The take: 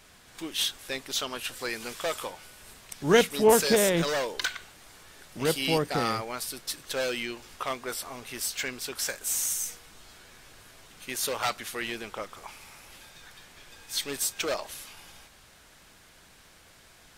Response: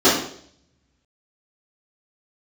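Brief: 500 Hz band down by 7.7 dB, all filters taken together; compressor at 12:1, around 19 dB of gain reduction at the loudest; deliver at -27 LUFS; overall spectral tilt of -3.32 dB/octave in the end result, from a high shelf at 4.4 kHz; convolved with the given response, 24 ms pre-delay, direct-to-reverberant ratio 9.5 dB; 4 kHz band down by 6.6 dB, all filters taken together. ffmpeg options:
-filter_complex "[0:a]equalizer=f=500:t=o:g=-9,equalizer=f=4000:t=o:g=-4.5,highshelf=f=4400:g=-7.5,acompressor=threshold=0.0112:ratio=12,asplit=2[s0][s1];[1:a]atrim=start_sample=2205,adelay=24[s2];[s1][s2]afir=irnorm=-1:irlink=0,volume=0.0211[s3];[s0][s3]amix=inputs=2:normalize=0,volume=6.68"

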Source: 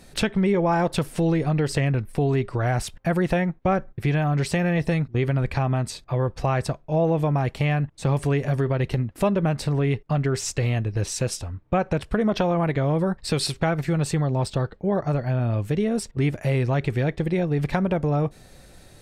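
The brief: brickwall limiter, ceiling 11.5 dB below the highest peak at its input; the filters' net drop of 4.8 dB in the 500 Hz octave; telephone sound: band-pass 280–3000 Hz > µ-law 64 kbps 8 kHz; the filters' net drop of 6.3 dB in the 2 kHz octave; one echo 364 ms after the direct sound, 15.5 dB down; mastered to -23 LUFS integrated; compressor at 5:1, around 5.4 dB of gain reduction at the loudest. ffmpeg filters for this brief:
-af "equalizer=f=500:t=o:g=-5,equalizer=f=2000:t=o:g=-7,acompressor=threshold=0.0562:ratio=5,alimiter=level_in=1.06:limit=0.0631:level=0:latency=1,volume=0.944,highpass=280,lowpass=3000,aecho=1:1:364:0.168,volume=7.08" -ar 8000 -c:a pcm_mulaw

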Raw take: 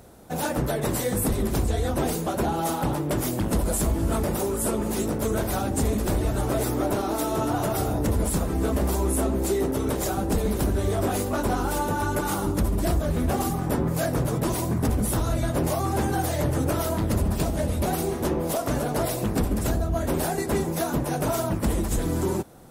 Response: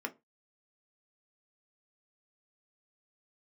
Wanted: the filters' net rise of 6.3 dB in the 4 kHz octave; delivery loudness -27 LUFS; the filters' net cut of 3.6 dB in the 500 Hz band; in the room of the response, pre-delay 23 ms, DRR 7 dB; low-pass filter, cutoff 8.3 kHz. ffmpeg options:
-filter_complex "[0:a]lowpass=8300,equalizer=f=500:t=o:g=-5,equalizer=f=4000:t=o:g=8,asplit=2[s0][s1];[1:a]atrim=start_sample=2205,adelay=23[s2];[s1][s2]afir=irnorm=-1:irlink=0,volume=0.355[s3];[s0][s3]amix=inputs=2:normalize=0,volume=0.891"

